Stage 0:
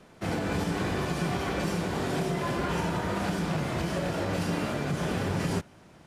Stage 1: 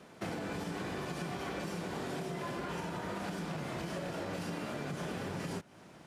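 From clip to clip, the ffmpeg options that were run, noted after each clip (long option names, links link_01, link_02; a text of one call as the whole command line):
ffmpeg -i in.wav -af "highpass=59,equalizer=frequency=81:width=1.2:gain=-7,acompressor=threshold=-36dB:ratio=6" out.wav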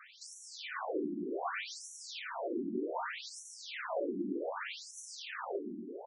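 ffmpeg -i in.wav -filter_complex "[0:a]asoftclip=type=tanh:threshold=-35.5dB,asplit=2[link_01][link_02];[link_02]aecho=0:1:144|677:0.501|0.355[link_03];[link_01][link_03]amix=inputs=2:normalize=0,afftfilt=real='re*between(b*sr/1024,260*pow(8000/260,0.5+0.5*sin(2*PI*0.65*pts/sr))/1.41,260*pow(8000/260,0.5+0.5*sin(2*PI*0.65*pts/sr))*1.41)':imag='im*between(b*sr/1024,260*pow(8000/260,0.5+0.5*sin(2*PI*0.65*pts/sr))/1.41,260*pow(8000/260,0.5+0.5*sin(2*PI*0.65*pts/sr))*1.41)':win_size=1024:overlap=0.75,volume=10dB" out.wav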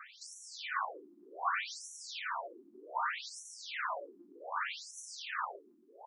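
ffmpeg -i in.wav -af "highpass=frequency=1100:width_type=q:width=2.4" out.wav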